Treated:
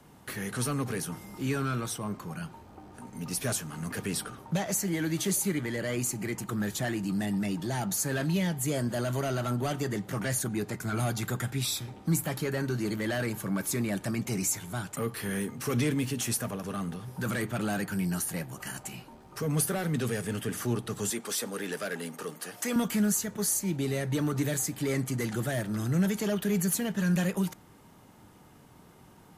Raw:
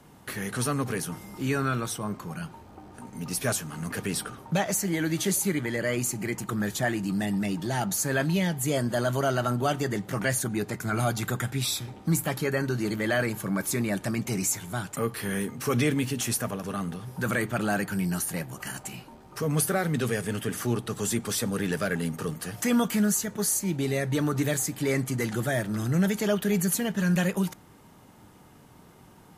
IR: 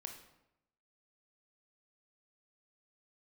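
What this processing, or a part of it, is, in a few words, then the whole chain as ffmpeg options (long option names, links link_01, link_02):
one-band saturation: -filter_complex "[0:a]asettb=1/sr,asplit=3[link_01][link_02][link_03];[link_01]atrim=end=21.104[link_04];[link_02]atrim=start=21.1:end=22.76,asetpts=PTS-STARTPTS,afade=type=in:duration=0.004:curve=qsin,afade=type=out:start_time=1.656:duration=0.004:curve=qsin,highpass=320[link_05];[link_03]atrim=start=22.756[link_06];[link_04][link_05]acrossfade=duration=0.004:curve1=hsin:curve2=qsin[link_07];[link_07][link_06]acrossfade=duration=0.004:curve1=qsin:curve2=hsin,acrossover=split=340|4600[link_08][link_09][link_10];[link_09]asoftclip=type=tanh:threshold=-27.5dB[link_11];[link_08][link_11][link_10]amix=inputs=3:normalize=0,volume=-2dB"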